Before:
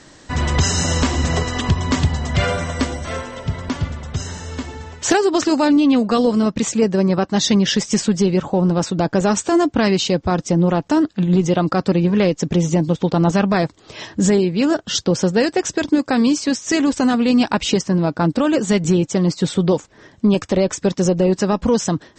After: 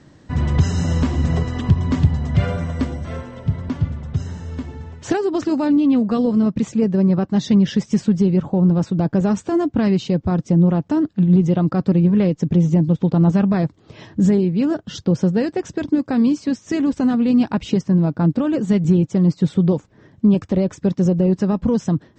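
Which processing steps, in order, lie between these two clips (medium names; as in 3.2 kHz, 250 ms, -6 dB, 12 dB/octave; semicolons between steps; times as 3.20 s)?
low-pass 3.1 kHz 6 dB/octave; peaking EQ 130 Hz +12.5 dB 2.6 oct; trim -8.5 dB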